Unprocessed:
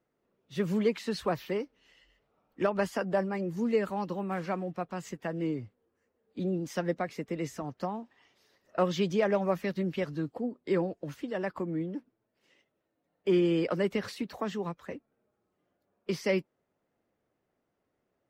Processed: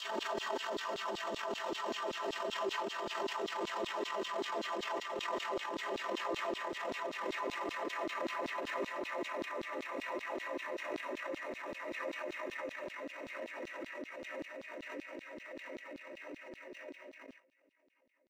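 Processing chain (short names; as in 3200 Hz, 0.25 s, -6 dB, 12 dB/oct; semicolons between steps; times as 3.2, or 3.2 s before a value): Paulstretch 25×, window 1.00 s, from 14.55; limiter -32 dBFS, peak gain reduction 9.5 dB; transient shaper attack -9 dB, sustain +11 dB; gate with hold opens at -44 dBFS; comb 3.2 ms, depth 93%; LFO high-pass saw down 5.2 Hz 280–4300 Hz; backwards sustainer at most 46 dB/s; gain -1.5 dB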